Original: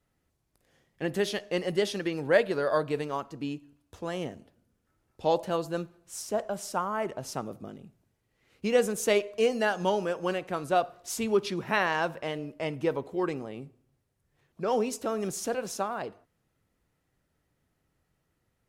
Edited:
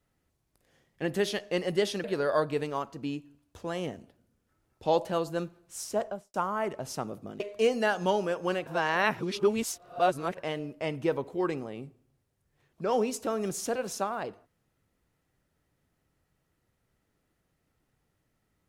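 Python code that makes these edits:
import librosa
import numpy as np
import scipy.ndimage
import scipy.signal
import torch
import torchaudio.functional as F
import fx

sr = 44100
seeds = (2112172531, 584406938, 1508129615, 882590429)

y = fx.studio_fade_out(x, sr, start_s=6.39, length_s=0.33)
y = fx.edit(y, sr, fx.cut(start_s=2.04, length_s=0.38),
    fx.cut(start_s=7.78, length_s=1.41),
    fx.reverse_span(start_s=10.45, length_s=1.71), tone=tone)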